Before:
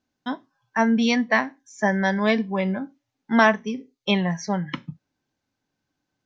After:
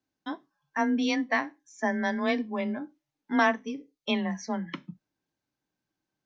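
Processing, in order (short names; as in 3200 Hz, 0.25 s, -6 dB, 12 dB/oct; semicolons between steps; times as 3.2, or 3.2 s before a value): frequency shift +23 Hz; gain -6.5 dB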